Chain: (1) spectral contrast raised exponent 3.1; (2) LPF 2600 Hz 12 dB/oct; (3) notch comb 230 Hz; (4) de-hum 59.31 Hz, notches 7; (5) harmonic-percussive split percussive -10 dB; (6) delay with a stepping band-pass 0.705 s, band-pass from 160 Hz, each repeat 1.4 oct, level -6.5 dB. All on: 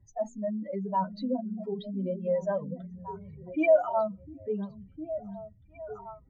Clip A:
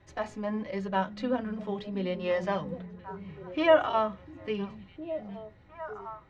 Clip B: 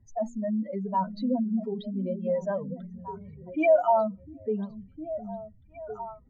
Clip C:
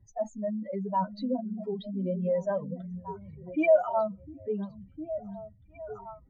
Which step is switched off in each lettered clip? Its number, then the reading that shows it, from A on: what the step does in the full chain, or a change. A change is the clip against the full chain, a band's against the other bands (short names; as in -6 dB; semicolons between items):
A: 1, 2 kHz band +6.5 dB; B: 3, 1 kHz band +2.5 dB; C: 4, 125 Hz band +2.0 dB